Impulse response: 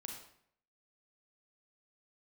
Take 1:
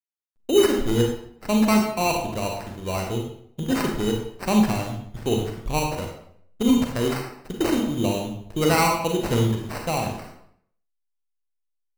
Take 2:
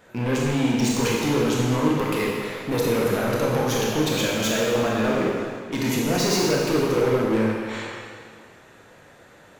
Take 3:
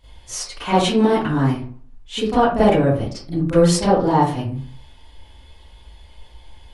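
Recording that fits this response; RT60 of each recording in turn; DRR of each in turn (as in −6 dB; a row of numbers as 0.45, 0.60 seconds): 1; 0.65, 2.0, 0.45 seconds; 1.0, −4.0, −13.0 decibels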